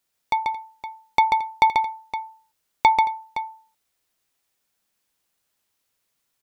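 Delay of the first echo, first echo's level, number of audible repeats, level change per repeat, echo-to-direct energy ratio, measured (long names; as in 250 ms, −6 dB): 138 ms, −4.5 dB, 3, repeats not evenly spaced, −3.5 dB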